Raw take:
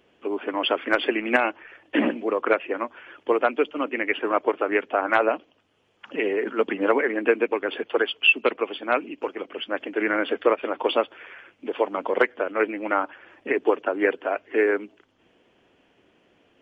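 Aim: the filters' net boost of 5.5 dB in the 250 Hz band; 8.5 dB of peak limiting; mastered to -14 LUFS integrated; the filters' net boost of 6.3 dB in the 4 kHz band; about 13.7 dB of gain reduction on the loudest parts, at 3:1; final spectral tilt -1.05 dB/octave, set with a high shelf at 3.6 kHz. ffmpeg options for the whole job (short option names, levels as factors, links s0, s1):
-af "equalizer=f=250:t=o:g=7.5,highshelf=f=3600:g=8,equalizer=f=4000:t=o:g=4.5,acompressor=threshold=0.0398:ratio=3,volume=8.91,alimiter=limit=0.794:level=0:latency=1"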